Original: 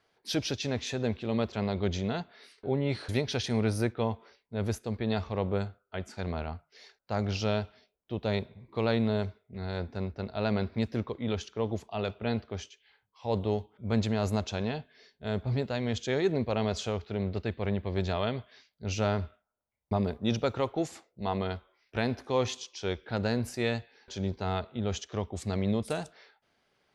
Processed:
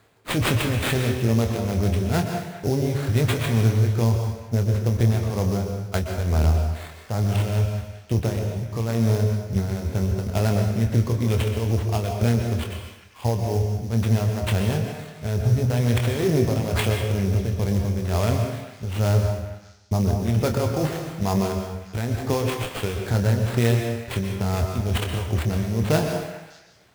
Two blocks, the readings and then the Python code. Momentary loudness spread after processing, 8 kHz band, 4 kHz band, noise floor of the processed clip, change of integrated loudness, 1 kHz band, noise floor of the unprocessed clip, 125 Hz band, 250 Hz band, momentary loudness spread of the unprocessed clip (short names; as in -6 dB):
7 LU, +9.0 dB, +5.0 dB, -46 dBFS, +8.5 dB, +5.0 dB, -78 dBFS, +13.0 dB, +6.5 dB, 9 LU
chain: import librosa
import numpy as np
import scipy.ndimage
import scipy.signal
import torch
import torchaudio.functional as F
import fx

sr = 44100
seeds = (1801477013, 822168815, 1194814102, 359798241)

p1 = fx.peak_eq(x, sr, hz=95.0, db=11.5, octaves=1.6)
p2 = fx.over_compress(p1, sr, threshold_db=-29.0, ratio=-0.5)
p3 = p1 + (p2 * 10.0 ** (2.5 / 20.0))
p4 = fx.sample_hold(p3, sr, seeds[0], rate_hz=5800.0, jitter_pct=20)
p5 = p4 * (1.0 - 0.56 / 2.0 + 0.56 / 2.0 * np.cos(2.0 * np.pi * 2.2 * (np.arange(len(p4)) / sr)))
p6 = fx.doubler(p5, sr, ms=26.0, db=-8.0)
p7 = p6 + fx.echo_stepped(p6, sr, ms=200, hz=710.0, octaves=1.4, feedback_pct=70, wet_db=-11.0, dry=0)
y = fx.rev_plate(p7, sr, seeds[1], rt60_s=0.9, hf_ratio=0.9, predelay_ms=110, drr_db=4.5)